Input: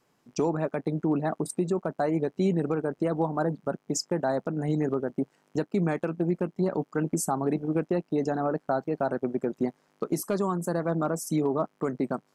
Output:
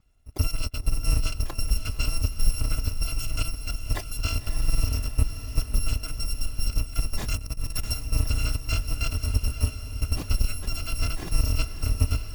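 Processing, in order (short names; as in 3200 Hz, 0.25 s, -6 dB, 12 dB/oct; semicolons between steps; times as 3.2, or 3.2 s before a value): FFT order left unsorted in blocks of 256 samples; tilt -4.5 dB/oct; on a send: diffused feedback echo 0.577 s, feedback 59%, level -9.5 dB; 7.34–7.94 on the sum: negative-ratio compressor -31 dBFS, ratio -0.5; gain +3.5 dB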